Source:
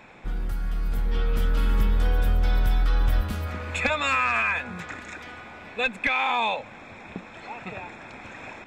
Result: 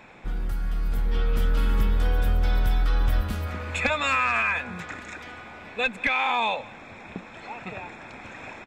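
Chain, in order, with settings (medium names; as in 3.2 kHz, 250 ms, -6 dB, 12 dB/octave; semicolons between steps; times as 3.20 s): delay 181 ms -22.5 dB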